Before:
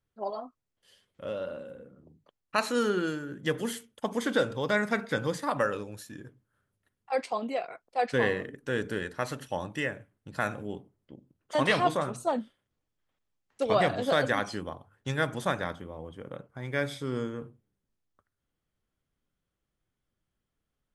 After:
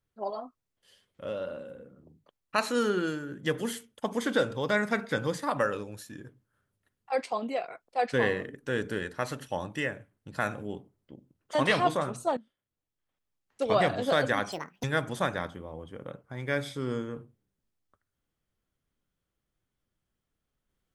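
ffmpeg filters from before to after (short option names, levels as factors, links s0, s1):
-filter_complex "[0:a]asplit=4[s0][s1][s2][s3];[s0]atrim=end=12.37,asetpts=PTS-STARTPTS,afade=t=out:st=12.366:d=0.004:c=hsin:silence=0.141254[s4];[s1]atrim=start=12.37:end=14.524,asetpts=PTS-STARTPTS,afade=t=in:d=1.37:silence=0.141254[s5];[s2]atrim=start=14.52:end=15.09,asetpts=PTS-STARTPTS,asetrate=79380,aresample=44100[s6];[s3]atrim=start=15.086[s7];[s4][s5]concat=n=2:v=0:a=1[s8];[s8][s6]acrossfade=d=0.004:c1=hsin:c2=hsin[s9];[s9][s7]acrossfade=d=0.004:c1=hsin:c2=hsin"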